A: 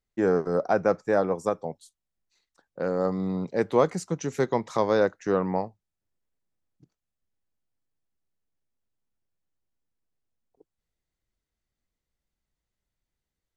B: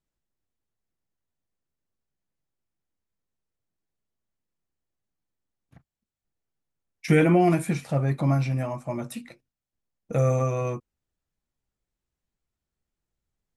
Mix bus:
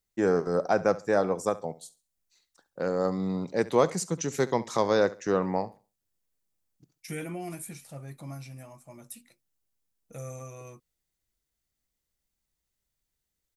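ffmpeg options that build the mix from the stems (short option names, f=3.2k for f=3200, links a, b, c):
-filter_complex "[0:a]volume=-1.5dB,asplit=2[a][b];[b]volume=-18dB[c];[1:a]crystalizer=i=1.5:c=0,volume=-18dB[d];[c]aecho=0:1:68|136|204|272:1|0.26|0.0676|0.0176[e];[a][d][e]amix=inputs=3:normalize=0,highshelf=f=4.4k:g=11"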